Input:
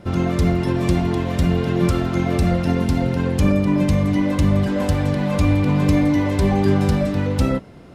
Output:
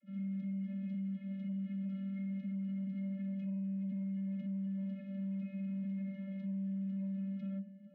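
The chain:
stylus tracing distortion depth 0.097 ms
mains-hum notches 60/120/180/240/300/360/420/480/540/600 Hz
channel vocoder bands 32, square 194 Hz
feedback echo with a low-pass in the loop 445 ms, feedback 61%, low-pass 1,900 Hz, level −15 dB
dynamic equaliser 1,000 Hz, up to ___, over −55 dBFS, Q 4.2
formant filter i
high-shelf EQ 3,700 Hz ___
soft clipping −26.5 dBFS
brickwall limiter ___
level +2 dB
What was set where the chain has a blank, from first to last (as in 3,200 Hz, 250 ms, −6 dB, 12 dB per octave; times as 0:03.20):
−3 dB, −11.5 dB, −36.5 dBFS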